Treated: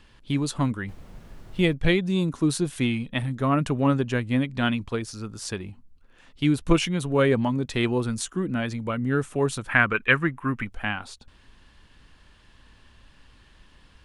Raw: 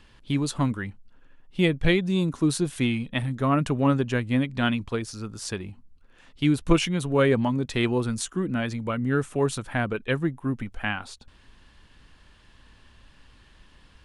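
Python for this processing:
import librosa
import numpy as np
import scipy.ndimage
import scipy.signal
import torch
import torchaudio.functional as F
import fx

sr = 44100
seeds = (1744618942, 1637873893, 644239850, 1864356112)

y = fx.dmg_noise_colour(x, sr, seeds[0], colour='brown', level_db=-41.0, at=(0.87, 1.72), fade=0.02)
y = fx.band_shelf(y, sr, hz=1700.0, db=11.5, octaves=1.7, at=(9.69, 10.65))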